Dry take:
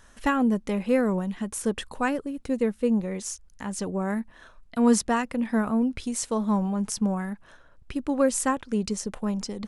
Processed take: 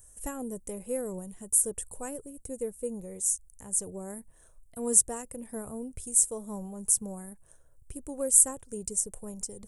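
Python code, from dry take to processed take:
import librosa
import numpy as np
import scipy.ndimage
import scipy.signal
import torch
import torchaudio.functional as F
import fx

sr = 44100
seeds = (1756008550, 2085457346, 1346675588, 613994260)

y = fx.curve_eq(x, sr, hz=(130.0, 220.0, 450.0, 1300.0, 4400.0, 8400.0), db=(0, -14, -4, -17, -16, 15))
y = F.gain(torch.from_numpy(y), -3.0).numpy()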